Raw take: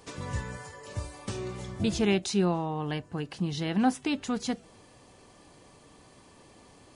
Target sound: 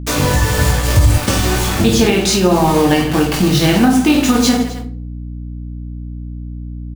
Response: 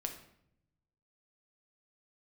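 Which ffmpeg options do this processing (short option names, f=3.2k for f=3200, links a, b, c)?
-filter_complex "[0:a]acrusher=bits=6:mix=0:aa=0.000001,aecho=1:1:20|50|95|162.5|263.8:0.631|0.398|0.251|0.158|0.1,acompressor=threshold=-31dB:ratio=3,bandreject=f=50:t=h:w=6,bandreject=f=100:t=h:w=6,bandreject=f=150:t=h:w=6,bandreject=f=200:t=h:w=6[a];[1:a]atrim=start_sample=2205,asetrate=83790,aresample=44100[b];[a][b]afir=irnorm=-1:irlink=0,aeval=exprs='val(0)+0.00224*(sin(2*PI*60*n/s)+sin(2*PI*2*60*n/s)/2+sin(2*PI*3*60*n/s)/3+sin(2*PI*4*60*n/s)/4+sin(2*PI*5*60*n/s)/5)':c=same,asettb=1/sr,asplit=3[c][d][e];[c]atrim=end=0.574[f];[d]atrim=start=0.57:end=1.18,asetpts=PTS-STARTPTS,afade=t=in:d=0.004:c=qsin,afade=t=out:st=0.606:d=0.004:c=qsin,equalizer=f=73:w=0.6:g=10.5[g];[e]atrim=start=1.176[h];[f][g]acrossfade=d=0.004:c1=hsin:c2=qsin[i];[i][h]acrossfade=d=0.004:c1=qsin:c2=hsin,alimiter=level_in=29dB:limit=-1dB:release=50:level=0:latency=1,volume=-1dB"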